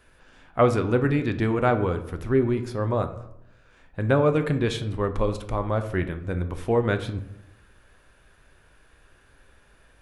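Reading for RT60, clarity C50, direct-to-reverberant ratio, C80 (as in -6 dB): 0.80 s, 12.0 dB, 7.5 dB, 14.5 dB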